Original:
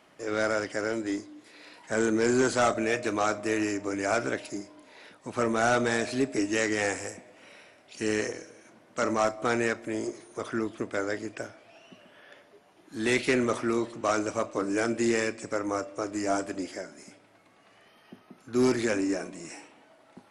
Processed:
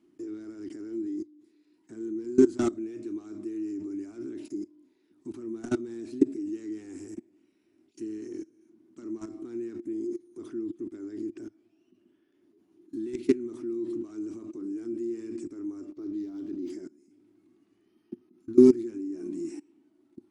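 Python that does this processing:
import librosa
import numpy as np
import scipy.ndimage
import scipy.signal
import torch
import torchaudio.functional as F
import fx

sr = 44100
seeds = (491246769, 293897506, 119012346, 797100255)

y = fx.resample_linear(x, sr, factor=4, at=(15.93, 16.7))
y = fx.low_shelf(y, sr, hz=90.0, db=-5.0)
y = fx.level_steps(y, sr, step_db=23)
y = fx.curve_eq(y, sr, hz=(100.0, 150.0, 350.0, 510.0, 1000.0, 1800.0, 6800.0), db=(0, -4, 13, -21, -15, -17, -10))
y = F.gain(torch.from_numpy(y), 4.0).numpy()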